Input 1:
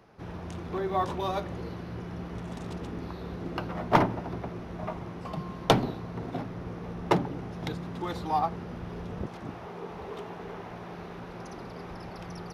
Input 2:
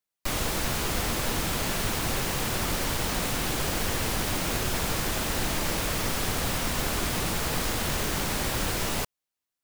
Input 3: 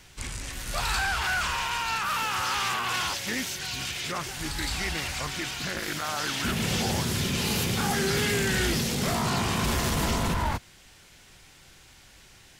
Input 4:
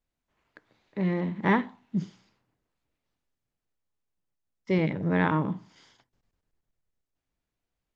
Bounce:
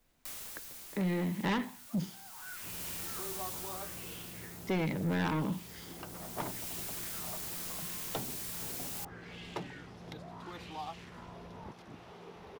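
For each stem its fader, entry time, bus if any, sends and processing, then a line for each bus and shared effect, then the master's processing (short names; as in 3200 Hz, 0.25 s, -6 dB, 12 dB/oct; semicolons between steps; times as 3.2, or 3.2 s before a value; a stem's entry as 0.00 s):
-15.5 dB, 2.45 s, no send, dry
-9.0 dB, 0.00 s, no send, pre-emphasis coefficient 0.9; auto duck -16 dB, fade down 1.20 s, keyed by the fourth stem
-16.0 dB, 1.15 s, no send, limiter -26 dBFS, peak gain reduction 5.5 dB; LFO band-pass sine 0.75 Hz 600–3100 Hz
+2.0 dB, 0.00 s, no send, notches 60/120 Hz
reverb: off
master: soft clip -23 dBFS, distortion -9 dB; three-band squash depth 40%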